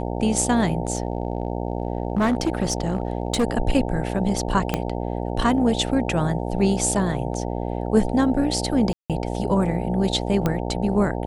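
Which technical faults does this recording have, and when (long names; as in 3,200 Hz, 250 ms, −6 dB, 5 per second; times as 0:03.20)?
mains buzz 60 Hz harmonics 15 −27 dBFS
0:00.95–0:03.45: clipping −16 dBFS
0:04.74: click −7 dBFS
0:08.93–0:09.10: drop-out 167 ms
0:10.46: click −9 dBFS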